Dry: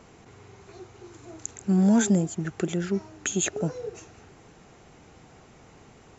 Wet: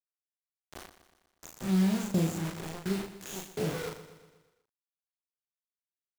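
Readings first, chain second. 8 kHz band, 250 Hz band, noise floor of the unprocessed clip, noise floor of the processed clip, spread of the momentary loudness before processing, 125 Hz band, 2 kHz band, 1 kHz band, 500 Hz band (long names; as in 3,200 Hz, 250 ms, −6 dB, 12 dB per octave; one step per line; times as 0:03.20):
can't be measured, −6.5 dB, −53 dBFS, below −85 dBFS, 19 LU, −4.5 dB, −6.0 dB, −4.0 dB, −6.0 dB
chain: spectrum smeared in time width 103 ms
high-shelf EQ 4,400 Hz −6.5 dB
in parallel at 0 dB: downward compressor 4 to 1, threshold −39 dBFS, peak gain reduction 17.5 dB
on the sum: shaped tremolo saw down 1.4 Hz, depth 95%
bit reduction 6 bits
double-tracking delay 37 ms −4.5 dB
on a send: repeating echo 121 ms, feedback 55%, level −13 dB
on the sum: level −3 dB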